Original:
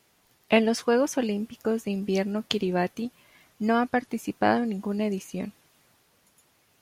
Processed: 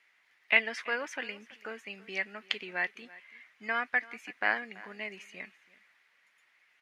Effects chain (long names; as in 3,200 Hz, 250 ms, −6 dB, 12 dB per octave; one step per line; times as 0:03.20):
resonant band-pass 2,000 Hz, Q 4
on a send: single-tap delay 332 ms −20.5 dB
on the sum: level +8 dB